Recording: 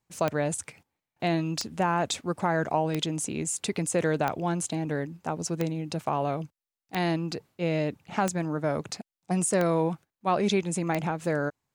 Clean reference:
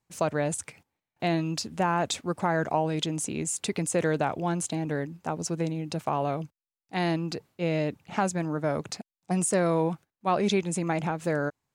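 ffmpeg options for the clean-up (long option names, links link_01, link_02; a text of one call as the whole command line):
ffmpeg -i in.wav -af "adeclick=threshold=4" out.wav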